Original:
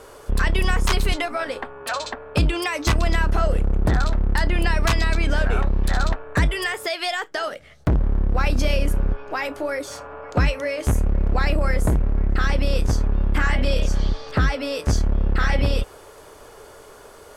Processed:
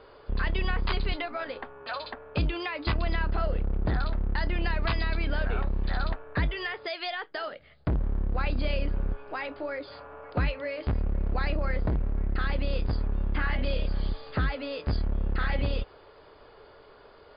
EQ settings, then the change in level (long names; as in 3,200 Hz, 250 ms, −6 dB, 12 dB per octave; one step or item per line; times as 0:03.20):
linear-phase brick-wall low-pass 5,000 Hz
−8.0 dB